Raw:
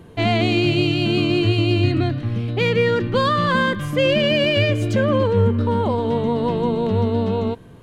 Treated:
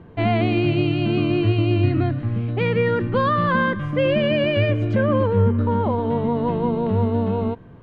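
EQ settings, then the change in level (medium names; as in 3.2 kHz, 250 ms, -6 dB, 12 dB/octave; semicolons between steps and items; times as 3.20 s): low-pass 2 kHz 12 dB/octave; peaking EQ 430 Hz -2.5 dB 0.77 oct; 0.0 dB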